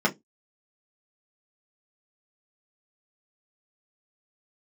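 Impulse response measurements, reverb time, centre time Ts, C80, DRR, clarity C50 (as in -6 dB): 0.15 s, 11 ms, 33.5 dB, -3.0 dB, 22.0 dB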